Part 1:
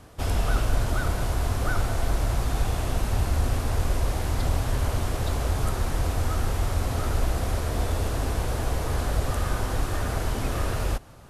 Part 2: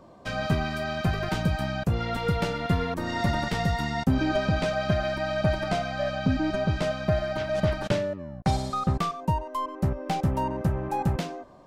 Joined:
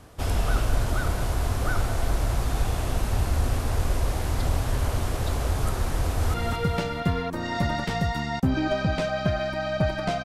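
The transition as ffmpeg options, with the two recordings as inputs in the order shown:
-filter_complex "[0:a]apad=whole_dur=10.24,atrim=end=10.24,atrim=end=6.342[a];[1:a]atrim=start=1.978:end=5.88[b];[a][b]acrossfade=d=0.004:c1=hsin:c2=hsin,asplit=2[c][d];[d]afade=t=in:st=5.99:d=0.01,afade=t=out:st=6.34:d=0.01,aecho=0:1:220|440|660|880|1100|1320:0.530884|0.265442|0.132721|0.0663606|0.0331803|0.0165901[e];[c][e]amix=inputs=2:normalize=0"

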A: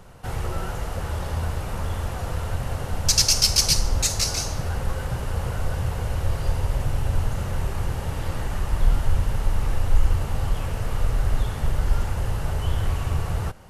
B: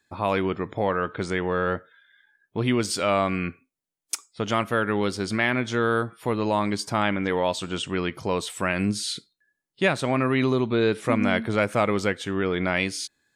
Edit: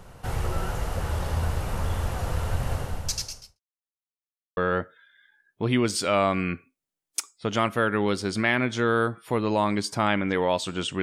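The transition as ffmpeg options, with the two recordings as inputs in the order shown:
-filter_complex "[0:a]apad=whole_dur=11.02,atrim=end=11.02,asplit=2[a][b];[a]atrim=end=3.6,asetpts=PTS-STARTPTS,afade=t=out:st=2.74:d=0.86:c=qua[c];[b]atrim=start=3.6:end=4.57,asetpts=PTS-STARTPTS,volume=0[d];[1:a]atrim=start=1.52:end=7.97,asetpts=PTS-STARTPTS,afade=t=in:d=0.004:c=hsin[e];[c][d][e]concat=n=3:v=0:a=1"

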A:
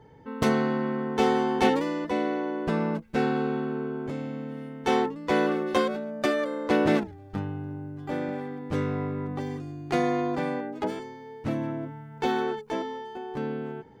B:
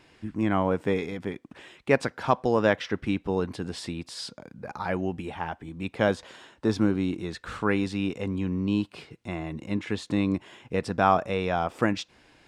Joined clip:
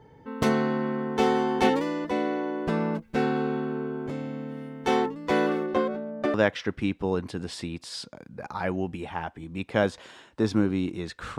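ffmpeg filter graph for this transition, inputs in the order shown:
-filter_complex "[0:a]asettb=1/sr,asplit=3[a][b][c];[a]atrim=end=5.664[d];[b]atrim=start=5.66:end=6.34,asetpts=PTS-STARTPTS,afade=t=in:d=0.004:c=qsin,afade=t=out:st=0.676:d=0.004:c=qsin,lowpass=f=1.2k:p=1[e];[c]atrim=start=6.336[f];[d][e]acrossfade=d=0.004:c1=hsin:c2=qsin[g];[g][f]acrossfade=d=0.004:c1=qsin:c2=hsin,apad=whole_dur=11.38,atrim=end=11.38,atrim=end=6.342[h];[1:a]atrim=start=2.588:end=7.63[i];[h][i]acrossfade=d=0.004:c1=hsin:c2=hsin"

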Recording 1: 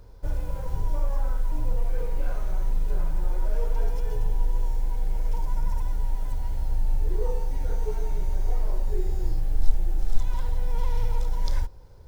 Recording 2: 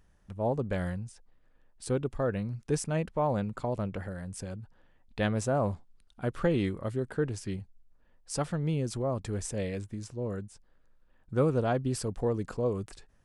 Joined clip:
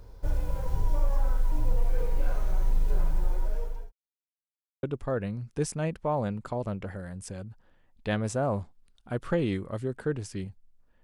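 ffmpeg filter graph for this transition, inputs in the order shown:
-filter_complex "[0:a]apad=whole_dur=11.03,atrim=end=11.03,asplit=2[a][b];[a]atrim=end=3.92,asetpts=PTS-STARTPTS,afade=t=out:st=2.93:d=0.99:c=qsin[c];[b]atrim=start=3.92:end=4.83,asetpts=PTS-STARTPTS,volume=0[d];[1:a]atrim=start=1.95:end=8.15,asetpts=PTS-STARTPTS,afade=t=in:d=0.004:c=hsin[e];[c][d][e]concat=n=3:v=0:a=1"

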